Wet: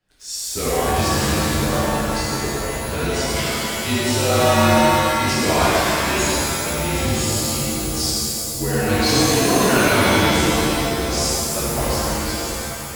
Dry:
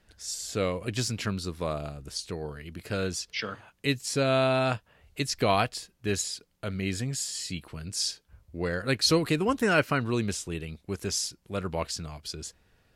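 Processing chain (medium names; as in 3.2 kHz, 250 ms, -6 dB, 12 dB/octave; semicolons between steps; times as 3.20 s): waveshaping leveller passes 2; frequency shift -34 Hz; pitch-shifted reverb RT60 2.5 s, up +7 st, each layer -2 dB, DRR -9.5 dB; trim -8 dB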